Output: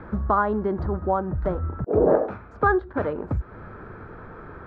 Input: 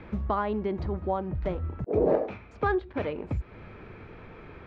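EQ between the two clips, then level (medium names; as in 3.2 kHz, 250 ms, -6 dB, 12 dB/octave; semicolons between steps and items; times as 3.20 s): resonant high shelf 1.9 kHz -8 dB, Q 3; +4.5 dB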